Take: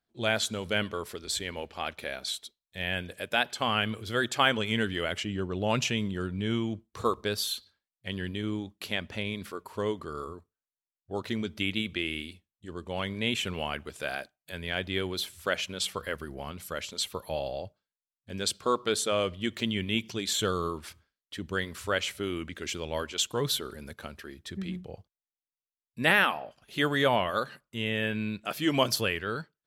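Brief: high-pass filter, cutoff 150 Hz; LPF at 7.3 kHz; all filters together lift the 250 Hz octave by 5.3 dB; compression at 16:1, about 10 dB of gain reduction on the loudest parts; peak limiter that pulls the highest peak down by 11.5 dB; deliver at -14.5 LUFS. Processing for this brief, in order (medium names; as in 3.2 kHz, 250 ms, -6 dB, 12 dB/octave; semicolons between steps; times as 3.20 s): high-pass 150 Hz; low-pass 7.3 kHz; peaking EQ 250 Hz +7.5 dB; compression 16:1, threshold -27 dBFS; trim +22 dB; peak limiter -2.5 dBFS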